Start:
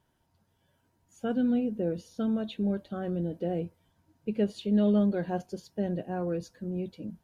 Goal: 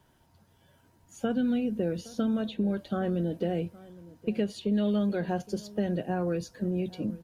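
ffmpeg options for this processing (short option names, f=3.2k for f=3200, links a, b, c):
-filter_complex "[0:a]acrossover=split=160|1400[a][b][c];[a]acompressor=threshold=-47dB:ratio=4[d];[b]acompressor=threshold=-37dB:ratio=4[e];[c]acompressor=threshold=-52dB:ratio=4[f];[d][e][f]amix=inputs=3:normalize=0,asplit=2[g][h];[h]adelay=816.3,volume=-20dB,highshelf=f=4k:g=-18.4[i];[g][i]amix=inputs=2:normalize=0,volume=8.5dB"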